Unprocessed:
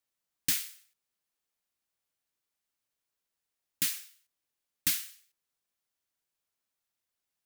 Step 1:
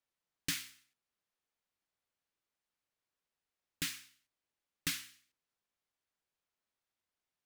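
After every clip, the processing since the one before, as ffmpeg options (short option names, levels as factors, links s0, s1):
-af "aemphasis=mode=reproduction:type=50kf,bandreject=f=65.54:t=h:w=4,bandreject=f=131.08:t=h:w=4,bandreject=f=196.62:t=h:w=4,bandreject=f=262.16:t=h:w=4,bandreject=f=327.7:t=h:w=4"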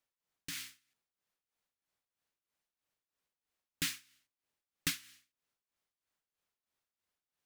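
-af "tremolo=f=3.1:d=0.74,volume=1.41"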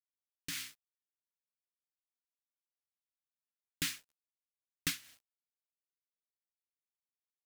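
-filter_complex "[0:a]asplit=2[s0][s1];[s1]alimiter=level_in=1.19:limit=0.0631:level=0:latency=1:release=467,volume=0.841,volume=0.841[s2];[s0][s2]amix=inputs=2:normalize=0,aeval=exprs='val(0)*gte(abs(val(0)),0.00188)':c=same,volume=0.668"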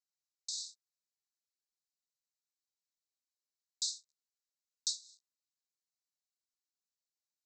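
-af "asuperpass=centerf=5600:order=20:qfactor=1.3,volume=1.78"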